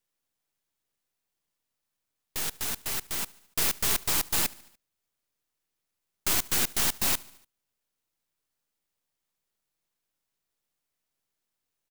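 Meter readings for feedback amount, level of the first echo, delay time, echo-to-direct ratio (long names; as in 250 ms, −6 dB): 60%, −23.0 dB, 73 ms, −21.0 dB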